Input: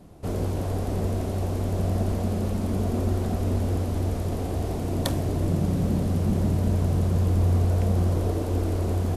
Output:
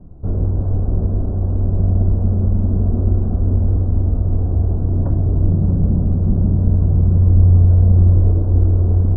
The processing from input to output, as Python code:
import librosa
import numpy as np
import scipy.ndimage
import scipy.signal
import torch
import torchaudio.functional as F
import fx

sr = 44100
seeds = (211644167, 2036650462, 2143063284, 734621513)

p1 = scipy.signal.sosfilt(scipy.signal.butter(12, 1600.0, 'lowpass', fs=sr, output='sos'), x)
p2 = fx.tilt_eq(p1, sr, slope=-4.5)
p3 = p2 + fx.echo_single(p2, sr, ms=634, db=-11.5, dry=0)
y = p3 * 10.0 ** (-5.5 / 20.0)